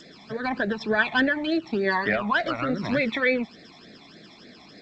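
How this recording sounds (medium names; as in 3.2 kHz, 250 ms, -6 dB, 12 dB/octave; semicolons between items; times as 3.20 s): phasing stages 12, 3.4 Hz, lowest notch 480–1000 Hz; a quantiser's noise floor 12-bit, dither none; G.722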